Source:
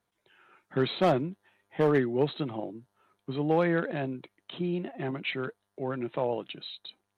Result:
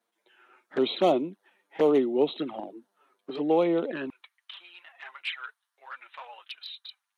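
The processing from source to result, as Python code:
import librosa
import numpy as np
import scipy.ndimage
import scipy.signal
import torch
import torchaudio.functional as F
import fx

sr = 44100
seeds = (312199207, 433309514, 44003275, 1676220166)

y = fx.highpass(x, sr, hz=fx.steps((0.0, 240.0), (4.1, 1100.0)), slope=24)
y = fx.env_flanger(y, sr, rest_ms=8.9, full_db=-26.5)
y = y * librosa.db_to_amplitude(4.0)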